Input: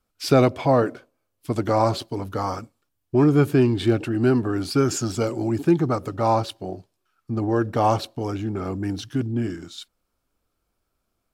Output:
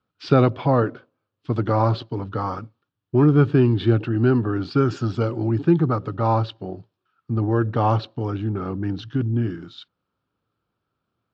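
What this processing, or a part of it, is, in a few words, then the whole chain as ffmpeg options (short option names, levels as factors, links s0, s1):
guitar cabinet: -af "highpass=100,equalizer=f=110:t=q:w=4:g=8,equalizer=f=160:t=q:w=4:g=5,equalizer=f=660:t=q:w=4:g=-5,equalizer=f=1300:t=q:w=4:g=3,equalizer=f=2200:t=q:w=4:g=-6,lowpass=f=3900:w=0.5412,lowpass=f=3900:w=1.3066"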